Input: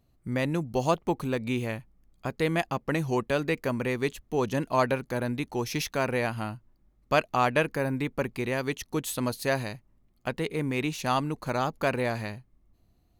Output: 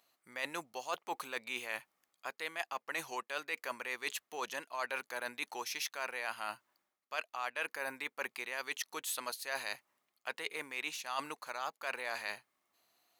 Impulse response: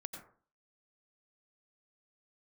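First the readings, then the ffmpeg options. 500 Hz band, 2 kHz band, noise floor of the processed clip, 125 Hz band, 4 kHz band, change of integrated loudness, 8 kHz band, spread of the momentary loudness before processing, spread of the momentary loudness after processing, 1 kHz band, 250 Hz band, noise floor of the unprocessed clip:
-16.5 dB, -5.0 dB, under -85 dBFS, under -35 dB, -4.5 dB, -10.5 dB, -3.5 dB, 9 LU, 5 LU, -10.0 dB, -24.0 dB, -67 dBFS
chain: -af "highpass=1000,areverse,acompressor=threshold=0.00708:ratio=6,areverse,volume=2.24"

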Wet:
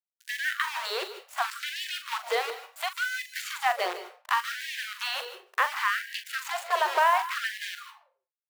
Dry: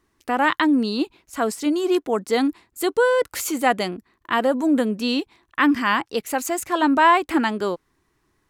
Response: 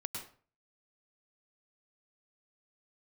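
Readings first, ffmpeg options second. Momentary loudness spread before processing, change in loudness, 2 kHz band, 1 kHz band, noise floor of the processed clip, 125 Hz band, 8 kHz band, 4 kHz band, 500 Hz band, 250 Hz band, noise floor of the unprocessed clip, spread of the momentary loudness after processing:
9 LU, -8.0 dB, -3.5 dB, -6.0 dB, under -85 dBFS, no reading, -8.0 dB, -2.5 dB, -13.0 dB, under -35 dB, -69 dBFS, 9 LU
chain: -filter_complex "[0:a]acrusher=bits=5:dc=4:mix=0:aa=0.000001,acrossover=split=1400|4000[s0][s1][s2];[s0]acompressor=threshold=0.0794:ratio=4[s3];[s1]acompressor=threshold=0.0316:ratio=4[s4];[s2]acompressor=threshold=0.00447:ratio=4[s5];[s3][s4][s5]amix=inputs=3:normalize=0,asplit=2[s6][s7];[1:a]atrim=start_sample=2205,highshelf=f=6400:g=7.5,adelay=42[s8];[s7][s8]afir=irnorm=-1:irlink=0,volume=0.376[s9];[s6][s9]amix=inputs=2:normalize=0,afftfilt=real='re*gte(b*sr/1024,350*pow(1600/350,0.5+0.5*sin(2*PI*0.69*pts/sr)))':imag='im*gte(b*sr/1024,350*pow(1600/350,0.5+0.5*sin(2*PI*0.69*pts/sr)))':win_size=1024:overlap=0.75"

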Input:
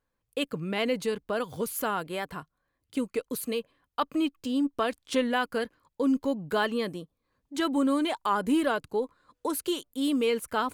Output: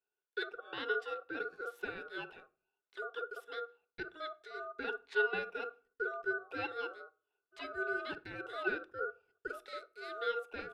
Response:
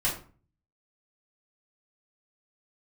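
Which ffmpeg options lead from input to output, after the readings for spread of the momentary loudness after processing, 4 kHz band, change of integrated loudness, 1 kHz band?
11 LU, -12.5 dB, -10.5 dB, -10.5 dB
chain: -filter_complex "[0:a]asplit=3[s0][s1][s2];[s0]bandpass=f=530:t=q:w=8,volume=1[s3];[s1]bandpass=f=1840:t=q:w=8,volume=0.501[s4];[s2]bandpass=f=2480:t=q:w=8,volume=0.355[s5];[s3][s4][s5]amix=inputs=3:normalize=0,acrossover=split=480[s6][s7];[s6]adelay=50[s8];[s8][s7]amix=inputs=2:normalize=0,aeval=exprs='val(0)*sin(2*PI*940*n/s)':c=same,asplit=2[s9][s10];[1:a]atrim=start_sample=2205[s11];[s10][s11]afir=irnorm=-1:irlink=0,volume=0.0708[s12];[s9][s12]amix=inputs=2:normalize=0,volume=1.58"

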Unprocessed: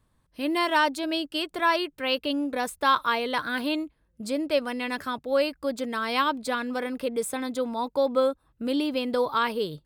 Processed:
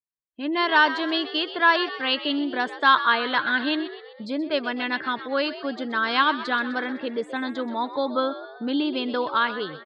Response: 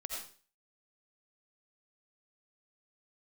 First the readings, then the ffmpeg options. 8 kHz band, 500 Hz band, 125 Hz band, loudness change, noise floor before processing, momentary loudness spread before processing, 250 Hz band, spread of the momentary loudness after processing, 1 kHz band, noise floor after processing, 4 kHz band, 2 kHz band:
under -15 dB, -1.5 dB, no reading, +3.0 dB, -70 dBFS, 7 LU, +2.0 dB, 10 LU, +3.5 dB, -46 dBFS, +4.5 dB, +7.0 dB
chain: -filter_complex "[0:a]afftdn=nr=35:nf=-45,dynaudnorm=f=110:g=11:m=1.41,highpass=180,equalizer=f=530:t=q:w=4:g=-7,equalizer=f=1600:t=q:w=4:g=6,equalizer=f=2400:t=q:w=4:g=-6,lowpass=f=4000:w=0.5412,lowpass=f=4000:w=1.3066,asplit=2[s0][s1];[s1]asplit=5[s2][s3][s4][s5][s6];[s2]adelay=127,afreqshift=67,volume=0.211[s7];[s3]adelay=254,afreqshift=134,volume=0.114[s8];[s4]adelay=381,afreqshift=201,volume=0.0617[s9];[s5]adelay=508,afreqshift=268,volume=0.0331[s10];[s6]adelay=635,afreqshift=335,volume=0.018[s11];[s7][s8][s9][s10][s11]amix=inputs=5:normalize=0[s12];[s0][s12]amix=inputs=2:normalize=0,adynamicequalizer=threshold=0.0158:dfrequency=2700:dqfactor=0.7:tfrequency=2700:tqfactor=0.7:attack=5:release=100:ratio=0.375:range=3:mode=boostabove:tftype=highshelf"

